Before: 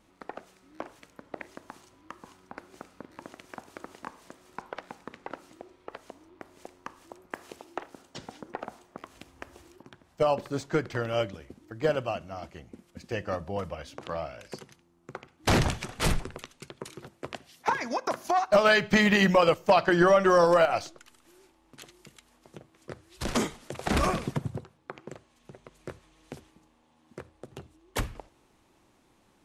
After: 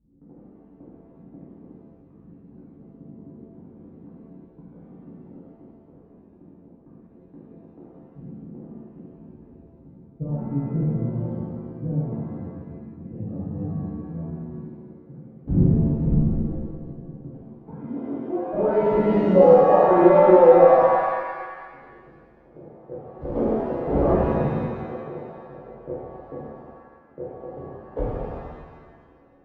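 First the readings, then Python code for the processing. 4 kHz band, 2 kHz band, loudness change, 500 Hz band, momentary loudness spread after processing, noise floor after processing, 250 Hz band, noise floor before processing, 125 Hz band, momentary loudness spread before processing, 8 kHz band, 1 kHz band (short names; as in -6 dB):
under -15 dB, -8.5 dB, +6.0 dB, +8.0 dB, 25 LU, -52 dBFS, +7.0 dB, -65 dBFS, +9.0 dB, 24 LU, under -30 dB, +4.5 dB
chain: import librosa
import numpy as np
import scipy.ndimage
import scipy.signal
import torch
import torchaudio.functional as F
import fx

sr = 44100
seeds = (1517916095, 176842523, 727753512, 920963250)

p1 = fx.filter_sweep_lowpass(x, sr, from_hz=190.0, to_hz=530.0, start_s=17.7, end_s=18.99, q=2.5)
p2 = fx.rider(p1, sr, range_db=3, speed_s=0.5)
p3 = p1 + F.gain(torch.from_numpy(p2), -1.5).numpy()
p4 = fx.rev_shimmer(p3, sr, seeds[0], rt60_s=1.6, semitones=7, shimmer_db=-8, drr_db=-10.0)
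y = F.gain(torch.from_numpy(p4), -12.0).numpy()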